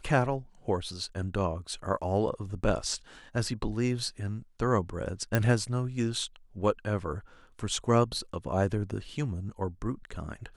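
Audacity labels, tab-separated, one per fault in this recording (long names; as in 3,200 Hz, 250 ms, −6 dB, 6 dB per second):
5.350000	5.350000	click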